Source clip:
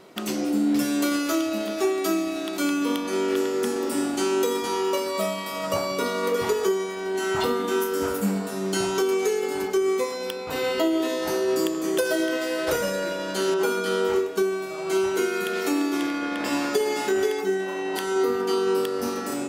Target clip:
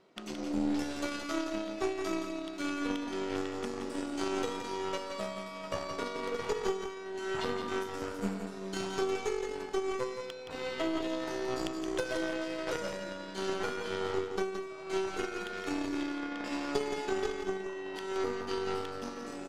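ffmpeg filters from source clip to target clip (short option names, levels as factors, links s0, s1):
-af "lowpass=6100,aeval=exprs='0.299*(cos(1*acos(clip(val(0)/0.299,-1,1)))-cos(1*PI/2))+0.119*(cos(2*acos(clip(val(0)/0.299,-1,1)))-cos(2*PI/2))+0.0376*(cos(3*acos(clip(val(0)/0.299,-1,1)))-cos(3*PI/2))+0.015*(cos(4*acos(clip(val(0)/0.299,-1,1)))-cos(4*PI/2))+0.0106*(cos(7*acos(clip(val(0)/0.299,-1,1)))-cos(7*PI/2))':c=same,aecho=1:1:171:0.447,volume=0.473"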